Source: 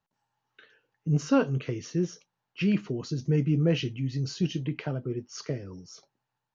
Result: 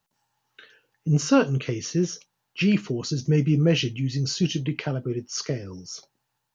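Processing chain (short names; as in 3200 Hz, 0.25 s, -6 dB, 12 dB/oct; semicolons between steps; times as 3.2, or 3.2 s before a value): high shelf 3500 Hz +9.5 dB; gain +4 dB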